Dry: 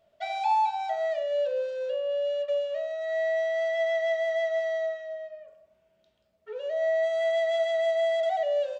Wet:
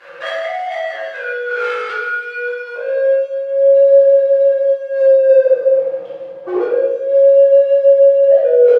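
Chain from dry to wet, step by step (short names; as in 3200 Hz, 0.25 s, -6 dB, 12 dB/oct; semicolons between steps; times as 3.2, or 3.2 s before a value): high shelf 2600 Hz +4 dB; comb 4.9 ms, depth 81%; negative-ratio compressor -36 dBFS, ratio -1; sample leveller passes 5; pitch shift -3 st; band-pass sweep 1400 Hz -> 580 Hz, 2.49–3.03; on a send: thin delay 0.164 s, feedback 56%, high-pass 2200 Hz, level -10 dB; on the sum: shoebox room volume 410 m³, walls mixed, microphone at 3.3 m; gain +3.5 dB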